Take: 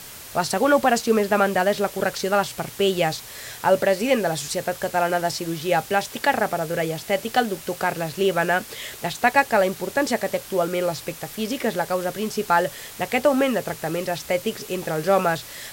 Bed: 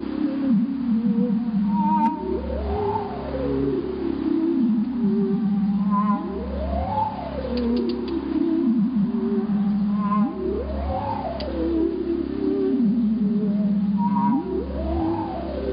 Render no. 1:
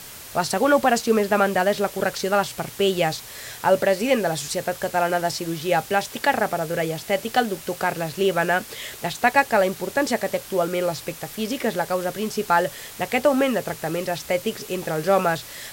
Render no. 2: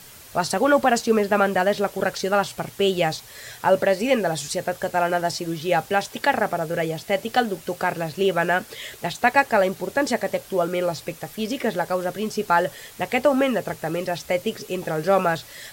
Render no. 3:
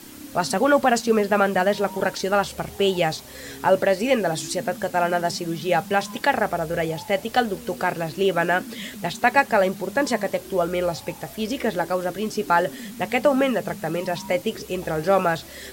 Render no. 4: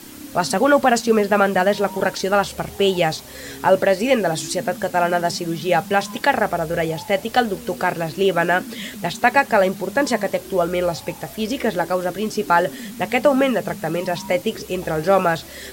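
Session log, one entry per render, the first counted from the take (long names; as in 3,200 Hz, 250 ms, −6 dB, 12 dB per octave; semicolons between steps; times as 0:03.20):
no processing that can be heard
broadband denoise 6 dB, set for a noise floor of −40 dBFS
mix in bed −18 dB
level +3 dB; brickwall limiter −3 dBFS, peak gain reduction 2 dB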